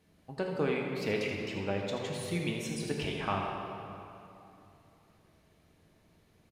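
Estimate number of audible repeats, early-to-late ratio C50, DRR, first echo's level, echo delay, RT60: 1, 1.0 dB, -0.5 dB, -9.5 dB, 81 ms, 2.9 s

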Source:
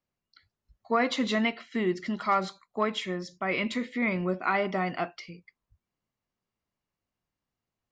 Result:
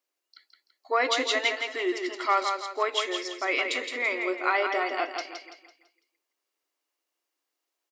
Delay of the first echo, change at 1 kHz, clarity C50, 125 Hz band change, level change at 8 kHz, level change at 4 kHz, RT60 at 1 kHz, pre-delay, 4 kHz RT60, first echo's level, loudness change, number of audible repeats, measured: 167 ms, +2.5 dB, no reverb, under -40 dB, no reading, +6.5 dB, no reverb, no reverb, no reverb, -5.5 dB, +2.0 dB, 4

